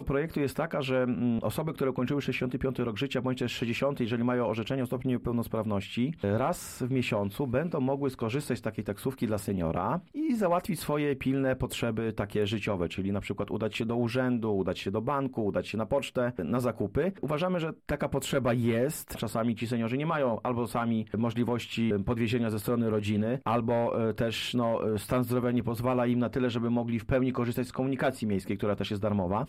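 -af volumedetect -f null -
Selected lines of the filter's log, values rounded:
mean_volume: -29.4 dB
max_volume: -16.5 dB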